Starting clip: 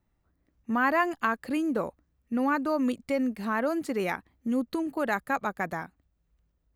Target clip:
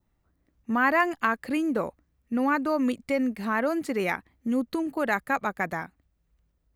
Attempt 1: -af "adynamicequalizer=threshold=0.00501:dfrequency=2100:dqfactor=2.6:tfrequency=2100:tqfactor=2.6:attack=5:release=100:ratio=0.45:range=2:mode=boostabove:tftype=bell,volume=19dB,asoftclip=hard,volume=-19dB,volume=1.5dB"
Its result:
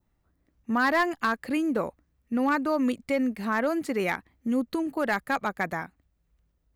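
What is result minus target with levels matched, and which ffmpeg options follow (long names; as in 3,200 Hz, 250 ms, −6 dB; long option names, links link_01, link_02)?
gain into a clipping stage and back: distortion +28 dB
-af "adynamicequalizer=threshold=0.00501:dfrequency=2100:dqfactor=2.6:tfrequency=2100:tqfactor=2.6:attack=5:release=100:ratio=0.45:range=2:mode=boostabove:tftype=bell,volume=12.5dB,asoftclip=hard,volume=-12.5dB,volume=1.5dB"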